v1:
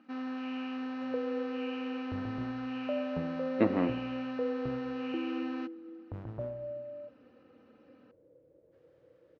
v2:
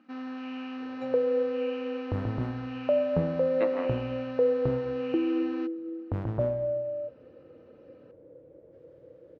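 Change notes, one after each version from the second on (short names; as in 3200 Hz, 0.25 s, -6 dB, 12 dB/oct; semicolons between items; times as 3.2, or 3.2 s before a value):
speech: add HPF 600 Hz 12 dB/oct; second sound +10.5 dB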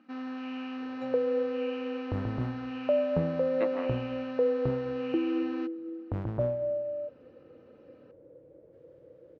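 reverb: off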